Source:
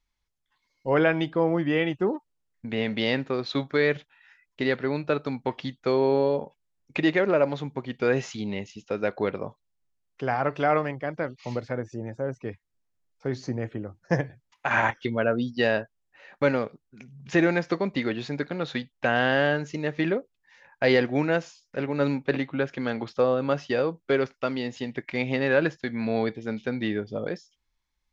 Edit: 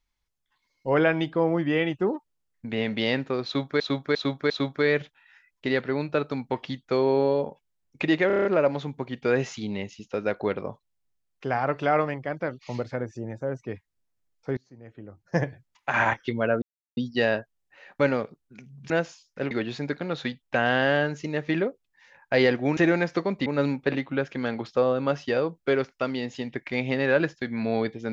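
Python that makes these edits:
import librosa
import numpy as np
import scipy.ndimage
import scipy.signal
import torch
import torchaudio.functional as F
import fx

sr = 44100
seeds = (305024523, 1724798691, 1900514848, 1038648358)

y = fx.edit(x, sr, fx.repeat(start_s=3.45, length_s=0.35, count=4),
    fx.stutter(start_s=7.22, slice_s=0.03, count=7),
    fx.fade_in_from(start_s=13.34, length_s=0.83, curve='qua', floor_db=-24.0),
    fx.insert_silence(at_s=15.39, length_s=0.35),
    fx.swap(start_s=17.32, length_s=0.69, other_s=21.27, other_length_s=0.61), tone=tone)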